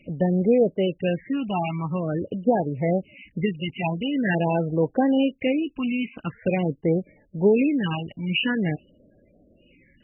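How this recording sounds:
phaser sweep stages 8, 0.46 Hz, lowest notch 480–2,900 Hz
MP3

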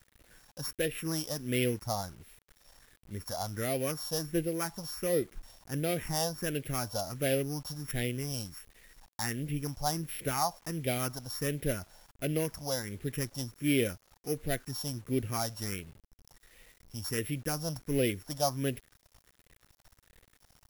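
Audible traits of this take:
a buzz of ramps at a fixed pitch in blocks of 8 samples
phaser sweep stages 4, 1.4 Hz, lowest notch 370–1,000 Hz
a quantiser's noise floor 10 bits, dither none

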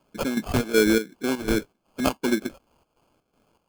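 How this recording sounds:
phaser sweep stages 2, 1.3 Hz, lowest notch 460–1,100 Hz
chopped level 2.7 Hz, depth 65%, duty 65%
aliases and images of a low sample rate 1,900 Hz, jitter 0%

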